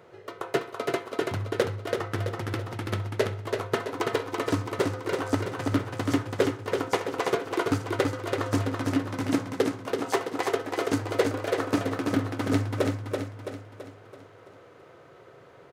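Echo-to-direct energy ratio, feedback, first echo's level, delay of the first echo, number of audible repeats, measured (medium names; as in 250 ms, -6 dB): -3.0 dB, 49%, -4.0 dB, 332 ms, 6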